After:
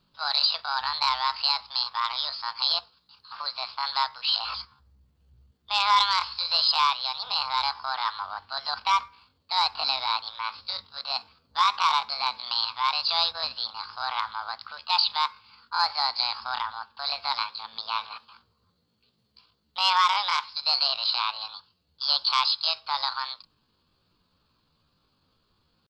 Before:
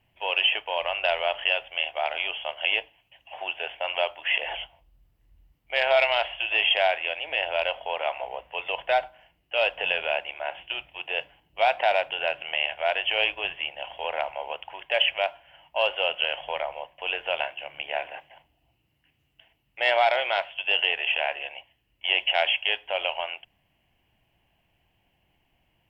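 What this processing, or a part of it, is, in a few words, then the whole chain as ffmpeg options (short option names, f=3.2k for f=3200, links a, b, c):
chipmunk voice: -af "asetrate=68011,aresample=44100,atempo=0.64842"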